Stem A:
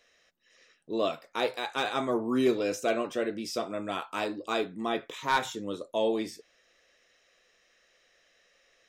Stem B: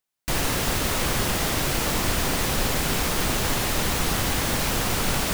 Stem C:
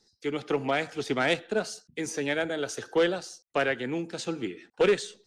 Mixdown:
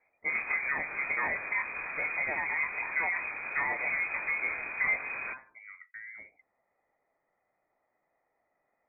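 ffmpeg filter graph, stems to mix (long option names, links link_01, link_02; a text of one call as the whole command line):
ffmpeg -i stem1.wav -i stem2.wav -i stem3.wav -filter_complex "[0:a]tiltshelf=frequency=820:gain=-4,acompressor=threshold=-31dB:ratio=12,volume=-10.5dB[link_01];[1:a]asoftclip=type=tanh:threshold=-19dB,volume=-8dB[link_02];[2:a]volume=2.5dB[link_03];[link_02][link_03]amix=inputs=2:normalize=0,flanger=delay=19:depth=7.3:speed=1.2,alimiter=limit=-21dB:level=0:latency=1:release=106,volume=0dB[link_04];[link_01][link_04]amix=inputs=2:normalize=0,lowpass=frequency=2100:width_type=q:width=0.5098,lowpass=frequency=2100:width_type=q:width=0.6013,lowpass=frequency=2100:width_type=q:width=0.9,lowpass=frequency=2100:width_type=q:width=2.563,afreqshift=-2500" out.wav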